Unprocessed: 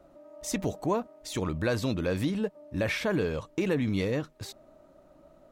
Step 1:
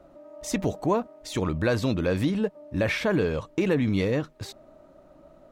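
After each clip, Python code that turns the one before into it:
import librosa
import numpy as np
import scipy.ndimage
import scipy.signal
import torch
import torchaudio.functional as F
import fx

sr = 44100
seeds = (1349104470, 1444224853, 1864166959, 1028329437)

y = fx.high_shelf(x, sr, hz=5700.0, db=-6.0)
y = y * librosa.db_to_amplitude(4.0)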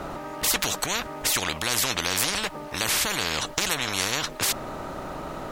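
y = fx.spectral_comp(x, sr, ratio=10.0)
y = y * librosa.db_to_amplitude(5.0)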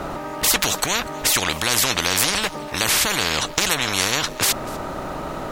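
y = x + 10.0 ** (-22.0 / 20.0) * np.pad(x, (int(244 * sr / 1000.0), 0))[:len(x)]
y = y * librosa.db_to_amplitude(5.5)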